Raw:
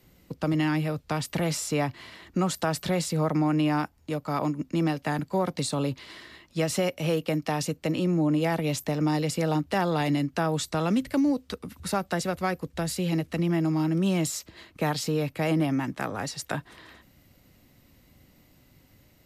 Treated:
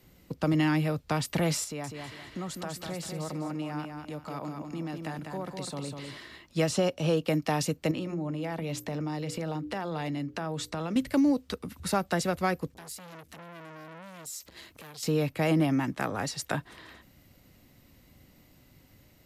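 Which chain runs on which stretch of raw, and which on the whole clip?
0:01.64–0:06.17: downward compressor 2 to 1, threshold −42 dBFS + repeating echo 199 ms, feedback 32%, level −5 dB
0:06.69–0:07.25: low-pass filter 8,000 Hz + parametric band 2,100 Hz −10 dB 0.35 octaves
0:07.91–0:10.96: high-shelf EQ 5,800 Hz −7 dB + mains-hum notches 60/120/180/240/300/360/420/480/540 Hz + downward compressor 5 to 1, threshold −30 dBFS
0:12.74–0:15.03: high-shelf EQ 5,500 Hz +11.5 dB + downward compressor 3 to 1, threshold −41 dBFS + saturating transformer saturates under 2,400 Hz
whole clip: no processing

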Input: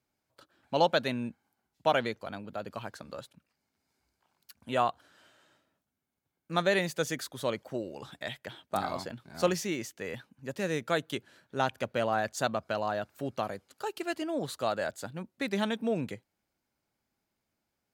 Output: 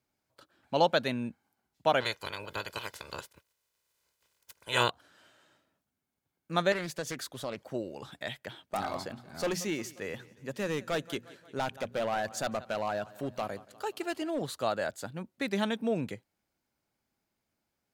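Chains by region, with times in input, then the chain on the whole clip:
0:02.00–0:04.89: ceiling on every frequency bin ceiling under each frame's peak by 24 dB + comb filter 2 ms, depth 49%
0:06.72–0:07.68: downward compressor 3 to 1, threshold −32 dBFS + highs frequency-modulated by the lows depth 0.36 ms
0:08.64–0:14.42: repeating echo 177 ms, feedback 57%, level −21.5 dB + hard clipping −26 dBFS + mains-hum notches 60/120/180/240 Hz
whole clip: no processing

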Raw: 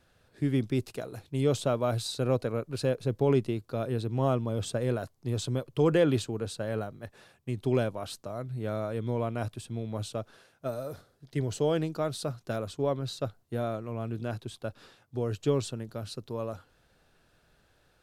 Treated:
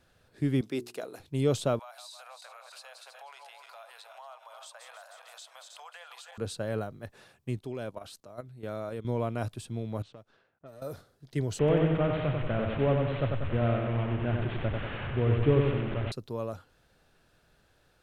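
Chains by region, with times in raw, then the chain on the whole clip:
0:00.61–0:01.20: high-pass filter 290 Hz + mains-hum notches 60/120/180/240/300/360/420 Hz
0:01.79–0:06.38: feedback delay that plays each chunk backwards 156 ms, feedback 65%, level −10 dB + Butterworth high-pass 700 Hz 48 dB per octave + downward compressor 4 to 1, threshold −46 dBFS
0:07.57–0:09.05: low-shelf EQ 170 Hz −6 dB + output level in coarse steps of 12 dB
0:10.02–0:10.82: mu-law and A-law mismatch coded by A + low-pass that shuts in the quiet parts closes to 1,300 Hz, open at −31 dBFS + downward compressor 3 to 1, threshold −49 dBFS
0:11.59–0:16.12: linear delta modulator 16 kbit/s, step −34 dBFS + low-shelf EQ 130 Hz +10.5 dB + repeating echo 94 ms, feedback 56%, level −4 dB
whole clip: no processing

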